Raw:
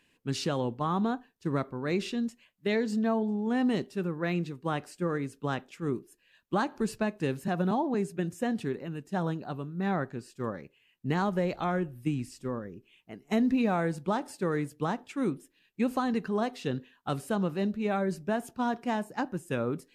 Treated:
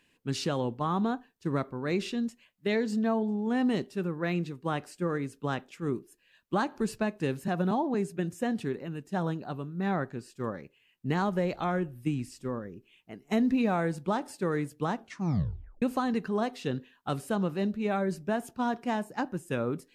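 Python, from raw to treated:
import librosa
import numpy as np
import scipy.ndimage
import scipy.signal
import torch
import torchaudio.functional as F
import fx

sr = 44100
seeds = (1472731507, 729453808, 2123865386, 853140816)

y = fx.edit(x, sr, fx.tape_stop(start_s=14.95, length_s=0.87), tone=tone)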